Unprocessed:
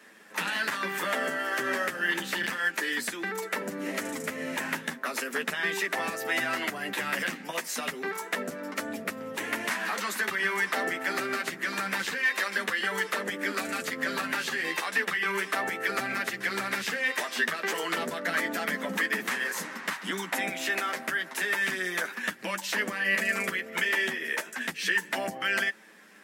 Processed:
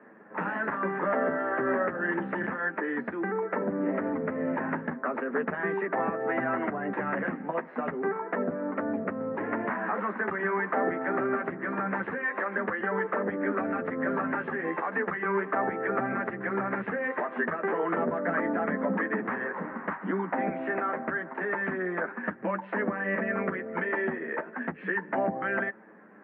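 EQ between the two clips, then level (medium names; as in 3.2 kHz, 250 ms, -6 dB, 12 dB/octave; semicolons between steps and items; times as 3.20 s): Bessel low-pass 1 kHz, order 6; +6.5 dB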